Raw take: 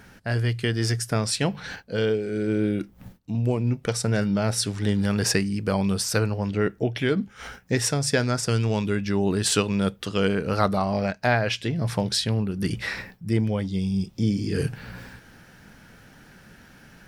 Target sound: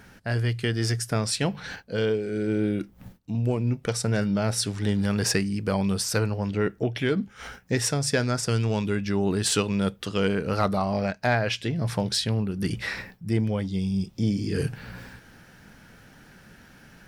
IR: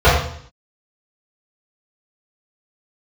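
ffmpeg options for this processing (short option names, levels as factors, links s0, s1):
-af "asoftclip=type=tanh:threshold=0.355,volume=0.891"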